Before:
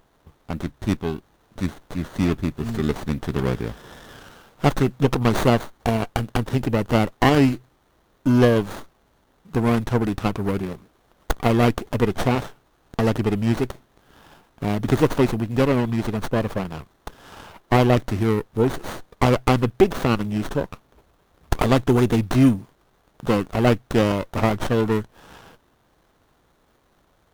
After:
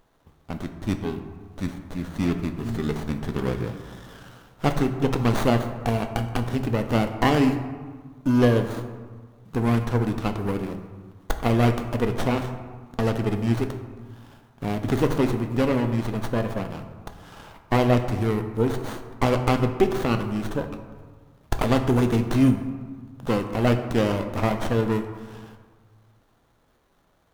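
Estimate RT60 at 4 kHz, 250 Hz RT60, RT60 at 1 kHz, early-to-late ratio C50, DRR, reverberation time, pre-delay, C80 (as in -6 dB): 0.85 s, 1.8 s, 1.6 s, 9.0 dB, 6.0 dB, 1.5 s, 3 ms, 10.0 dB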